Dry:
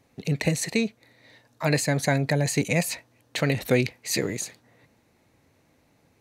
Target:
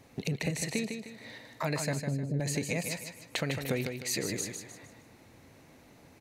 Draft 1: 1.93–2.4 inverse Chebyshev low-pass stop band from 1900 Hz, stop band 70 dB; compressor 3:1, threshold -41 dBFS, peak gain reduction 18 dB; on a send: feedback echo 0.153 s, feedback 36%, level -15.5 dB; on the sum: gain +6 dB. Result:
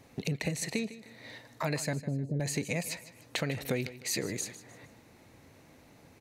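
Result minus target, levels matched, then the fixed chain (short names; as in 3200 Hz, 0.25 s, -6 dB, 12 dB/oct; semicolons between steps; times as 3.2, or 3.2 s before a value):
echo-to-direct -9 dB
1.93–2.4 inverse Chebyshev low-pass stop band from 1900 Hz, stop band 70 dB; compressor 3:1, threshold -41 dBFS, peak gain reduction 18 dB; on a send: feedback echo 0.153 s, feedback 36%, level -6.5 dB; on the sum: gain +6 dB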